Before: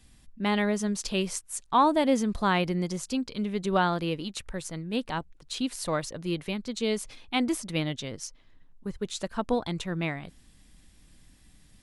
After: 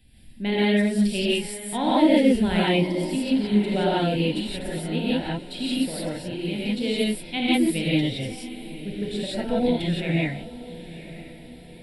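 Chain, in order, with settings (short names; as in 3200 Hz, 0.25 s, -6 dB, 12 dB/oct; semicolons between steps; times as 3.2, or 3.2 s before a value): 5.71–6.52 compressor, threshold -30 dBFS, peak gain reduction 7 dB; fixed phaser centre 2800 Hz, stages 4; diffused feedback echo 0.956 s, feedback 51%, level -15.5 dB; non-linear reverb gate 0.2 s rising, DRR -7 dB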